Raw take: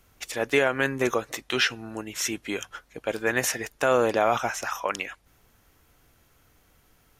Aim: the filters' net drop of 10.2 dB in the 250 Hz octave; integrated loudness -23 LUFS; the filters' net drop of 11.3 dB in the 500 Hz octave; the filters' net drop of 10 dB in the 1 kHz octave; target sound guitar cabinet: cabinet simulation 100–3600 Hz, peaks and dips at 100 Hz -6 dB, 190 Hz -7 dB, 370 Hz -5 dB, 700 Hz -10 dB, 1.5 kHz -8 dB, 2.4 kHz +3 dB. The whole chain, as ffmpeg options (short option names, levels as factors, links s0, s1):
-af "highpass=100,equalizer=f=100:t=q:w=4:g=-6,equalizer=f=190:t=q:w=4:g=-7,equalizer=f=370:t=q:w=4:g=-5,equalizer=f=700:t=q:w=4:g=-10,equalizer=f=1500:t=q:w=4:g=-8,equalizer=f=2400:t=q:w=4:g=3,lowpass=f=3600:w=0.5412,lowpass=f=3600:w=1.3066,equalizer=f=250:t=o:g=-6.5,equalizer=f=500:t=o:g=-6,equalizer=f=1000:t=o:g=-5.5,volume=2.99"